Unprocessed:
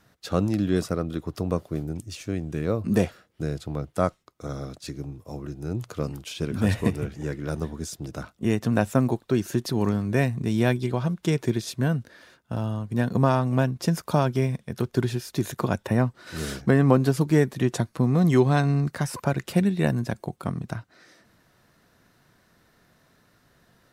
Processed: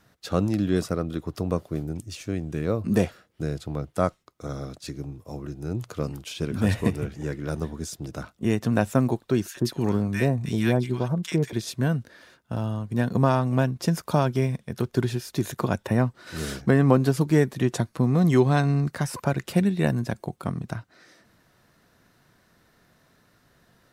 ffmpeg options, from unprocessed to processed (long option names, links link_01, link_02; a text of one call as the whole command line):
ffmpeg -i in.wav -filter_complex "[0:a]asettb=1/sr,asplit=3[link_01][link_02][link_03];[link_01]atrim=end=9.484[link_04];[link_02]atrim=start=9.48:end=11.53,asetpts=PTS-STARTPTS,afade=type=in:duration=0.004:curve=qsin,afade=type=out:start_time=2.046:duration=0.004:curve=qsin,acrossover=split=1200[link_05][link_06];[link_05]adelay=70[link_07];[link_07][link_06]amix=inputs=2:normalize=0,atrim=end_sample=90405[link_08];[link_03]atrim=start=11.526[link_09];[link_04][link_08]acrossfade=duration=0.004:curve1=hsin:curve2=qsin[link_10];[link_10][link_09]acrossfade=duration=0.004:curve1=qsin:curve2=hsin" out.wav